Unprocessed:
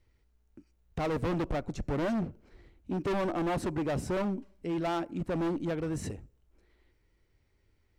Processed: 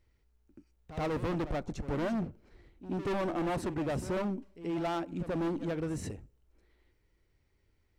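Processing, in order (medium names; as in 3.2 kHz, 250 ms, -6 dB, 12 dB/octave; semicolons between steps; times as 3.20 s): reverse echo 81 ms -13 dB; trim -2 dB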